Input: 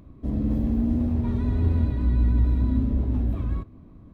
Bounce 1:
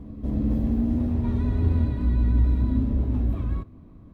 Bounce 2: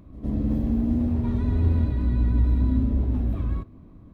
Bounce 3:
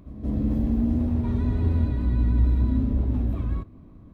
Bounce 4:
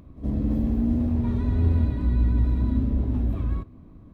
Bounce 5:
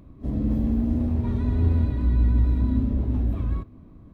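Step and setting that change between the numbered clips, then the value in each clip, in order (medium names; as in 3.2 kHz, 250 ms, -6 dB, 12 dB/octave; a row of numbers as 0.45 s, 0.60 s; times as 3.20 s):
pre-echo, time: 271 ms, 109 ms, 174 ms, 72 ms, 36 ms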